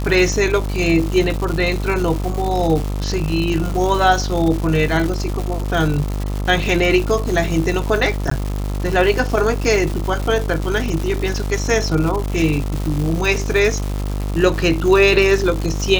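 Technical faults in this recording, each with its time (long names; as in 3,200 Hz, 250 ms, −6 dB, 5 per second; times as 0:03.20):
mains buzz 50 Hz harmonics 27 −22 dBFS
surface crackle 320 per second −22 dBFS
0:08.30–0:08.31: drop-out 14 ms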